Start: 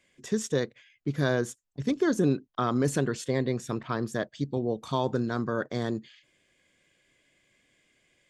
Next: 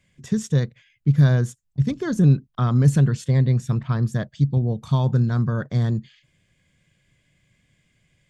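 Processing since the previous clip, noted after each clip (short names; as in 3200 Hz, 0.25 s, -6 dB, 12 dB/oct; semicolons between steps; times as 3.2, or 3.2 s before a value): resonant low shelf 220 Hz +13 dB, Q 1.5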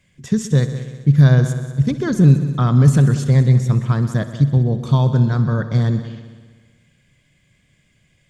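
multi-head echo 63 ms, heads all three, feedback 53%, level -16.5 dB; gain +4.5 dB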